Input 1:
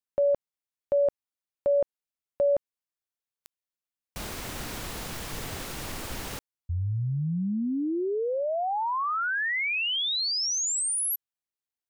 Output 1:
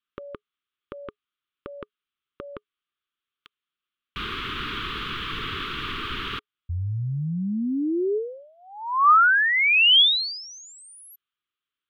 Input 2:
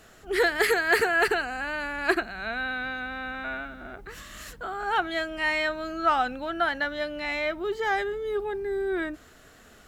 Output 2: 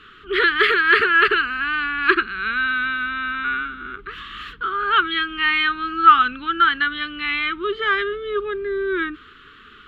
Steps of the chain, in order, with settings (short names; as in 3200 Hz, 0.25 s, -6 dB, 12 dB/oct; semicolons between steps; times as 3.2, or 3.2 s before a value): EQ curve 170 Hz 0 dB, 420 Hz +4 dB, 660 Hz -30 dB, 1200 Hz +14 dB, 1900 Hz +5 dB, 3300 Hz +13 dB, 5400 Hz -13 dB, 7700 Hz -20 dB; gain +1 dB